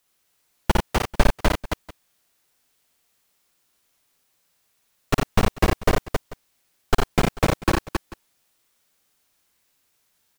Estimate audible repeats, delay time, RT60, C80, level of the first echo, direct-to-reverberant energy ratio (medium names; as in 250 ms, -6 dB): 4, 56 ms, no reverb, no reverb, -3.0 dB, no reverb